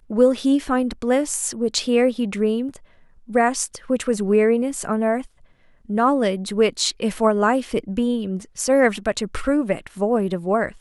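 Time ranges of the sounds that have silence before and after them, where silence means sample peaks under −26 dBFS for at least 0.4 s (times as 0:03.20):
0:03.35–0:05.21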